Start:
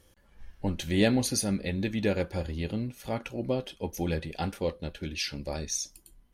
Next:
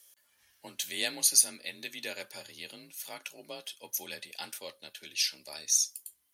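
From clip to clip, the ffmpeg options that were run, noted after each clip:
ffmpeg -i in.wav -af "aderivative,afreqshift=33,volume=8dB" out.wav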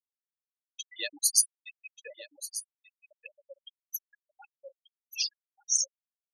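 ffmpeg -i in.wav -af "afftfilt=real='re*gte(hypot(re,im),0.0631)':imag='im*gte(hypot(re,im),0.0631)':win_size=1024:overlap=0.75,aecho=1:1:1185:0.2" out.wav

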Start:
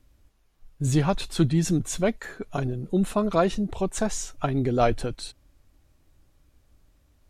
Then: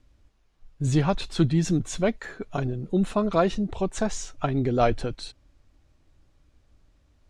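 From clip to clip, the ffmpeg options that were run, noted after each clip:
ffmpeg -i in.wav -af "lowpass=6600" out.wav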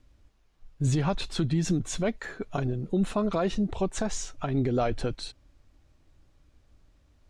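ffmpeg -i in.wav -af "alimiter=limit=-17.5dB:level=0:latency=1:release=111" out.wav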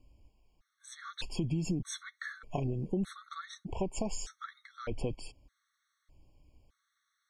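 ffmpeg -i in.wav -af "acompressor=threshold=-27dB:ratio=6,afftfilt=real='re*gt(sin(2*PI*0.82*pts/sr)*(1-2*mod(floor(b*sr/1024/1100),2)),0)':imag='im*gt(sin(2*PI*0.82*pts/sr)*(1-2*mod(floor(b*sr/1024/1100),2)),0)':win_size=1024:overlap=0.75,volume=-1.5dB" out.wav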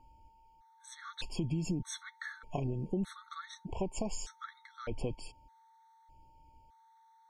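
ffmpeg -i in.wav -af "aeval=exprs='val(0)+0.001*sin(2*PI*900*n/s)':channel_layout=same,volume=-1.5dB" out.wav

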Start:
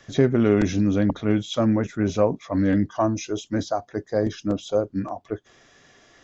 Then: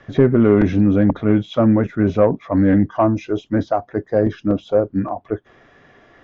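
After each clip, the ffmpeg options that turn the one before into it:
ffmpeg -i in.wav -af "lowpass=2000,acontrast=72" out.wav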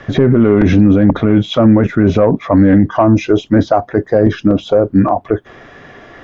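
ffmpeg -i in.wav -af "alimiter=level_in=13.5dB:limit=-1dB:release=50:level=0:latency=1,volume=-1dB" out.wav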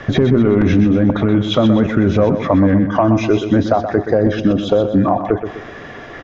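ffmpeg -i in.wav -af "acompressor=threshold=-17dB:ratio=2.5,aecho=1:1:125|250|375|500|625:0.355|0.156|0.0687|0.0302|0.0133,volume=3.5dB" out.wav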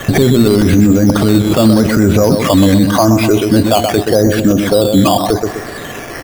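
ffmpeg -i in.wav -af "acrusher=samples=9:mix=1:aa=0.000001:lfo=1:lforange=5.4:lforate=0.85,alimiter=level_in=8.5dB:limit=-1dB:release=50:level=0:latency=1,volume=-1dB" out.wav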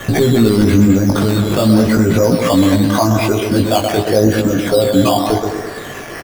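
ffmpeg -i in.wav -filter_complex "[0:a]flanger=delay=17:depth=3.8:speed=0.42,asplit=2[link_01][link_02];[link_02]adelay=210,highpass=300,lowpass=3400,asoftclip=type=hard:threshold=-12dB,volume=-6dB[link_03];[link_01][link_03]amix=inputs=2:normalize=0" out.wav

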